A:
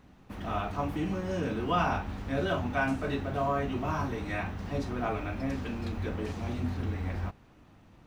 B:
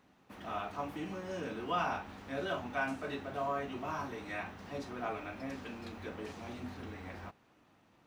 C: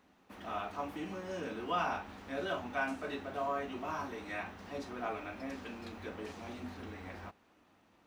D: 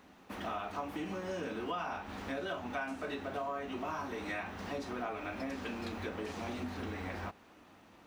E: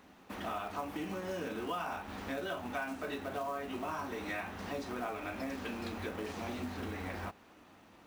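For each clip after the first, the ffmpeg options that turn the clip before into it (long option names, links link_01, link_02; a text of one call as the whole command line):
ffmpeg -i in.wav -af "highpass=frequency=360:poles=1,volume=-4.5dB" out.wav
ffmpeg -i in.wav -af "equalizer=frequency=130:width_type=o:width=0.36:gain=-12" out.wav
ffmpeg -i in.wav -af "acompressor=threshold=-44dB:ratio=5,volume=8dB" out.wav
ffmpeg -i in.wav -af "acrusher=bits=5:mode=log:mix=0:aa=0.000001" out.wav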